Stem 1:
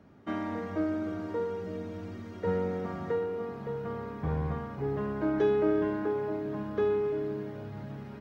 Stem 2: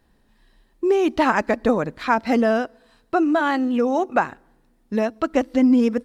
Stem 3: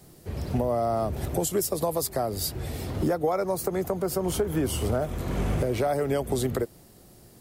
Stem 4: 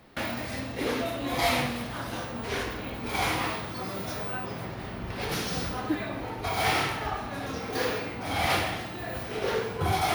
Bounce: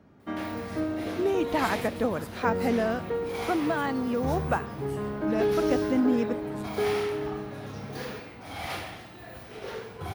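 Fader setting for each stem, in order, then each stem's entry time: 0.0, -8.5, -20.0, -9.0 dB; 0.00, 0.35, 0.20, 0.20 s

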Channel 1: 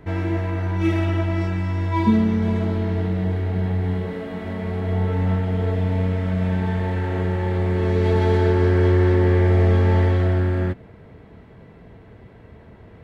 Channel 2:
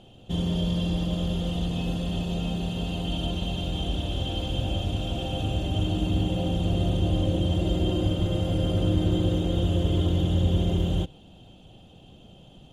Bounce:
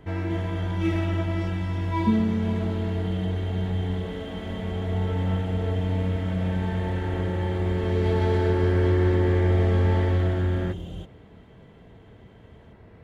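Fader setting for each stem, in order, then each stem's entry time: -4.5, -11.5 dB; 0.00, 0.00 s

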